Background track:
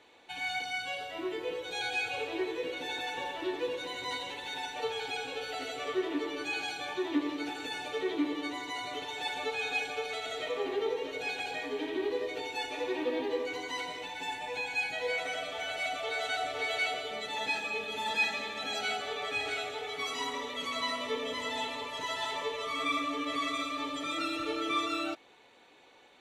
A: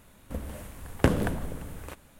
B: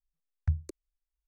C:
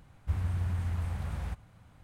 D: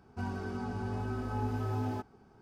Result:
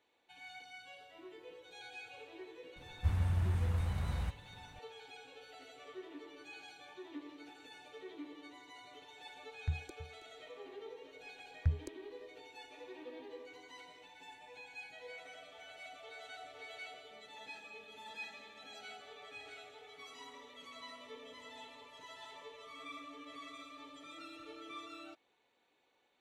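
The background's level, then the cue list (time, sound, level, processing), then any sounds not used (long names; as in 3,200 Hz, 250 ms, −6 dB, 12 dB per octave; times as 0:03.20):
background track −17 dB
0:02.76: mix in C −1 dB
0:09.20: mix in B −8 dB + single-tap delay 323 ms −15 dB
0:11.18: mix in B −3.5 dB
not used: A, D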